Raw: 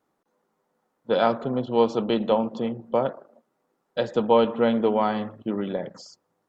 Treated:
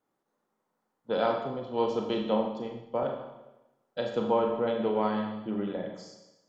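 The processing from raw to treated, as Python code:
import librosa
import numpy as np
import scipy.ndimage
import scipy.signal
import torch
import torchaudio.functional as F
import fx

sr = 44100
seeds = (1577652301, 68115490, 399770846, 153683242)

y = fx.lowpass(x, sr, hz=fx.line((4.22, 2700.0), (4.66, 1300.0)), slope=12, at=(4.22, 4.66), fade=0.02)
y = fx.rev_schroeder(y, sr, rt60_s=1.0, comb_ms=29, drr_db=2.0)
y = fx.band_widen(y, sr, depth_pct=40, at=(1.26, 3.03))
y = y * 10.0 ** (-7.5 / 20.0)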